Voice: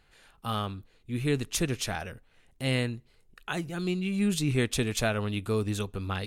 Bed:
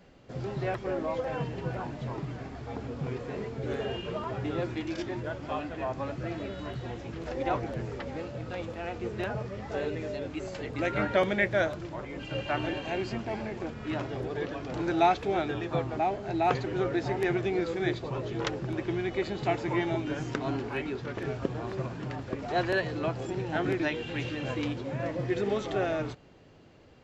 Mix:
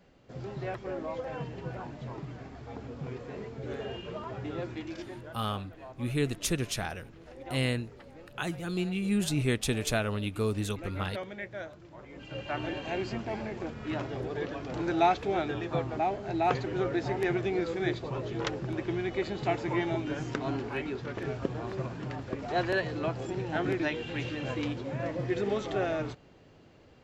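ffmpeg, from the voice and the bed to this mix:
-filter_complex "[0:a]adelay=4900,volume=0.841[s0];[1:a]volume=2.51,afade=t=out:st=4.81:d=0.63:silence=0.354813,afade=t=in:st=11.84:d=1.11:silence=0.237137[s1];[s0][s1]amix=inputs=2:normalize=0"

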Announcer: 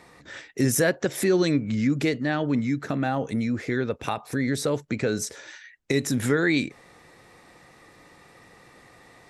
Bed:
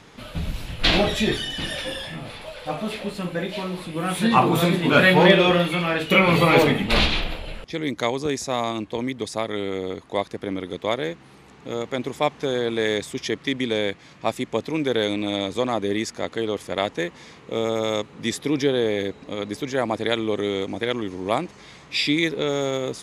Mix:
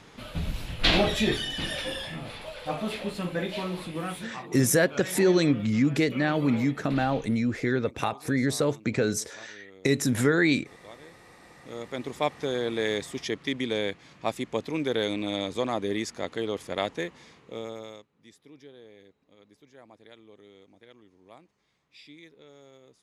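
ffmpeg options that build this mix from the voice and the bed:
-filter_complex "[0:a]adelay=3950,volume=1[s0];[1:a]volume=5.96,afade=t=out:st=3.86:d=0.44:silence=0.0944061,afade=t=in:st=11.35:d=0.86:silence=0.11885,afade=t=out:st=16.89:d=1.17:silence=0.0668344[s1];[s0][s1]amix=inputs=2:normalize=0"

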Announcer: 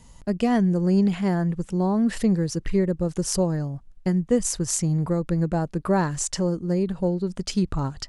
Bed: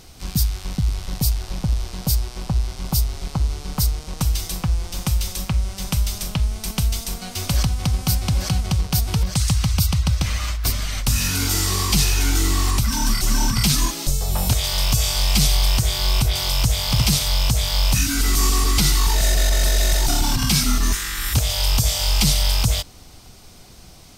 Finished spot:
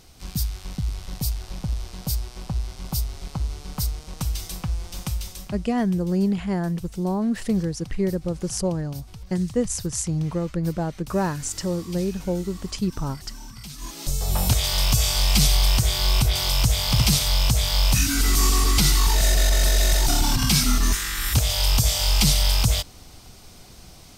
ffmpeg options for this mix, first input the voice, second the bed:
-filter_complex "[0:a]adelay=5250,volume=0.794[s0];[1:a]volume=5.01,afade=t=out:st=5.01:d=0.78:silence=0.177828,afade=t=in:st=13.78:d=0.54:silence=0.1[s1];[s0][s1]amix=inputs=2:normalize=0"

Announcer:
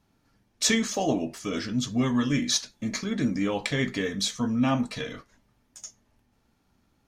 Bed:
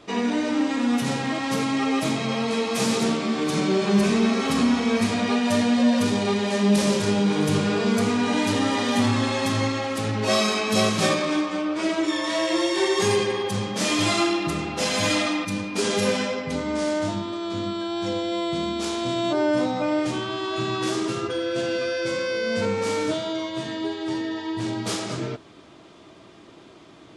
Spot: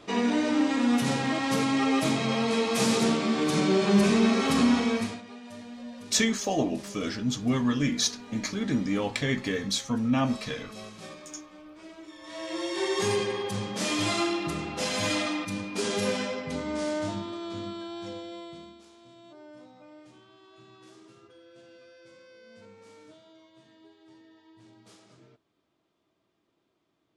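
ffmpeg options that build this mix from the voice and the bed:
-filter_complex "[0:a]adelay=5500,volume=0.891[s0];[1:a]volume=5.96,afade=t=out:st=4.77:d=0.45:silence=0.0891251,afade=t=in:st=12.19:d=0.78:silence=0.141254,afade=t=out:st=17.16:d=1.68:silence=0.0794328[s1];[s0][s1]amix=inputs=2:normalize=0"

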